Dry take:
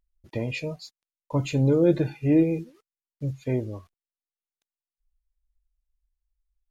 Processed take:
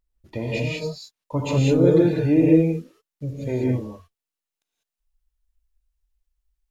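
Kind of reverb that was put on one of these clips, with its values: non-linear reverb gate 0.22 s rising, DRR -3.5 dB

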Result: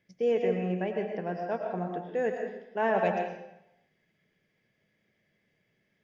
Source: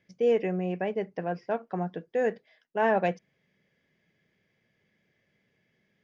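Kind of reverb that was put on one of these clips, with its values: digital reverb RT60 0.84 s, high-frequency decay 0.9×, pre-delay 70 ms, DRR 2.5 dB; gain -3 dB

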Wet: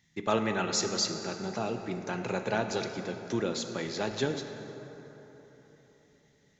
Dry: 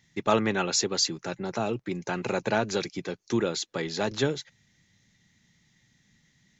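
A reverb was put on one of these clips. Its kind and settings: plate-style reverb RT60 3.9 s, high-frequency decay 0.5×, DRR 5.5 dB; gain -4.5 dB

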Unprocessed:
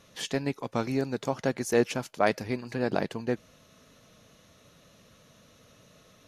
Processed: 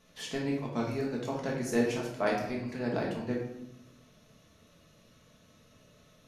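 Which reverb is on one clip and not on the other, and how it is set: shoebox room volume 240 m³, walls mixed, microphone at 1.5 m; gain -8.5 dB

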